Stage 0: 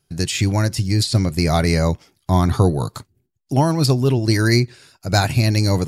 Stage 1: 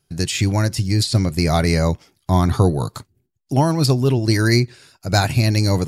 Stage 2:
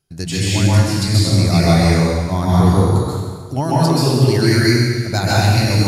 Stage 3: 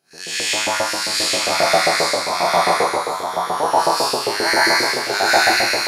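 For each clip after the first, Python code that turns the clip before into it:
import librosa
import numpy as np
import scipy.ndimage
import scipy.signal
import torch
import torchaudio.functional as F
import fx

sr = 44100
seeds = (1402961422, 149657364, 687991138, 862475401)

y1 = x
y2 = fx.rev_plate(y1, sr, seeds[0], rt60_s=1.6, hf_ratio=0.95, predelay_ms=115, drr_db=-7.5)
y2 = F.gain(torch.from_numpy(y2), -4.5).numpy()
y3 = fx.spec_blur(y2, sr, span_ms=111.0)
y3 = fx.filter_lfo_highpass(y3, sr, shape='saw_up', hz=7.5, low_hz=530.0, high_hz=2000.0, q=1.9)
y3 = y3 + 10.0 ** (-3.5 / 20.0) * np.pad(y3, (int(830 * sr / 1000.0), 0))[:len(y3)]
y3 = F.gain(torch.from_numpy(y3), 3.5).numpy()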